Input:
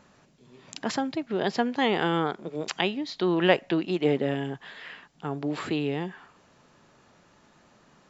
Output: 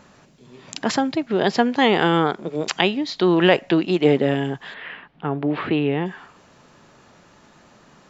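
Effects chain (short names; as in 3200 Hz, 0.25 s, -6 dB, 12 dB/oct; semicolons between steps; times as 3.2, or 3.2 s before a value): 4.74–6.06 LPF 3100 Hz 24 dB/oct; maximiser +7.5 dB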